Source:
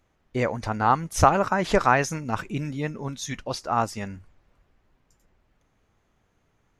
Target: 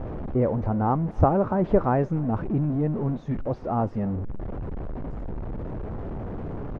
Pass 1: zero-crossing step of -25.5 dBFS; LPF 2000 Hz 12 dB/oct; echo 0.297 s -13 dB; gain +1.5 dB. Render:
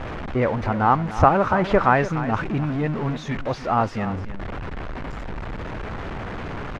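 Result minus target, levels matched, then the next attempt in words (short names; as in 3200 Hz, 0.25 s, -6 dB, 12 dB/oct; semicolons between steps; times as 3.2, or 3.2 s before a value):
2000 Hz band +12.5 dB; echo-to-direct +11.5 dB
zero-crossing step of -25.5 dBFS; LPF 590 Hz 12 dB/oct; echo 0.297 s -24.5 dB; gain +1.5 dB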